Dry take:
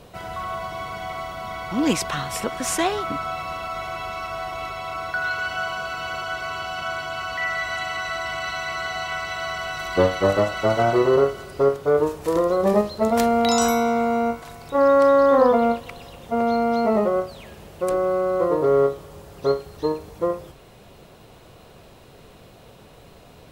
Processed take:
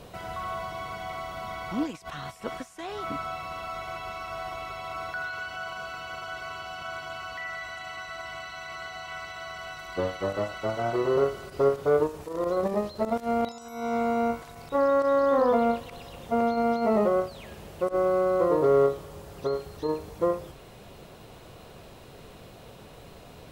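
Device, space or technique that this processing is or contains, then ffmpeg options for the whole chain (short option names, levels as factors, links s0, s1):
de-esser from a sidechain: -filter_complex "[0:a]asplit=2[s0][s1];[s1]highpass=7000,apad=whole_len=1036970[s2];[s0][s2]sidechaincompress=threshold=0.00178:ratio=10:attack=2.2:release=42"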